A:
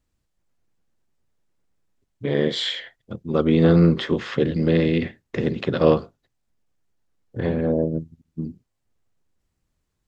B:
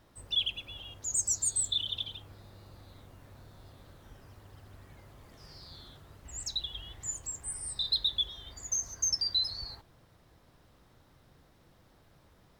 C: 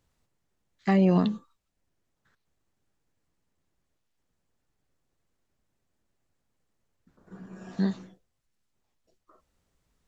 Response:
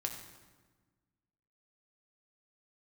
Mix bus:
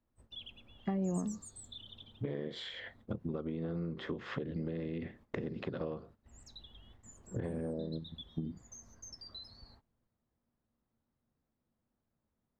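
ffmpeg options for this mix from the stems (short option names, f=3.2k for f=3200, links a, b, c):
-filter_complex "[0:a]acompressor=threshold=-31dB:ratio=2.5,volume=2.5dB,asplit=2[a][b];[1:a]equalizer=f=230:w=5.4:g=13.5,volume=-10.5dB[c];[2:a]acompressor=threshold=-28dB:ratio=6,highshelf=f=2k:g=-11.5,volume=-3dB[d];[b]apad=whole_len=444442[e];[d][e]sidechaincompress=threshold=-39dB:ratio=8:attack=16:release=291[f];[a][c]amix=inputs=2:normalize=0,acompressor=threshold=-34dB:ratio=10,volume=0dB[g];[f][g]amix=inputs=2:normalize=0,agate=range=-13dB:threshold=-57dB:ratio=16:detection=peak,highshelf=f=2.6k:g=-12"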